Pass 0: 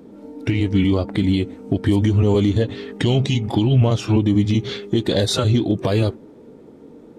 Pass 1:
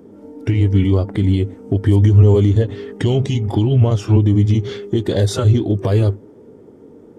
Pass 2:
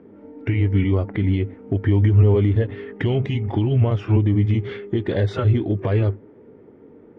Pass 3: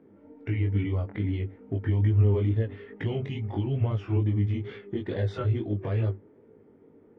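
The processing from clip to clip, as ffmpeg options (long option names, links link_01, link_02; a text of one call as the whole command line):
ffmpeg -i in.wav -af "equalizer=frequency=100:width_type=o:width=0.33:gain=10,equalizer=frequency=400:width_type=o:width=0.33:gain=5,equalizer=frequency=2500:width_type=o:width=0.33:gain=-5,equalizer=frequency=4000:width_type=o:width=0.33:gain=-9,volume=-1dB" out.wav
ffmpeg -i in.wav -af "lowpass=frequency=2200:width_type=q:width=2.1,volume=-4.5dB" out.wav
ffmpeg -i in.wav -af "flanger=delay=18:depth=3.5:speed=2.3,volume=-6dB" out.wav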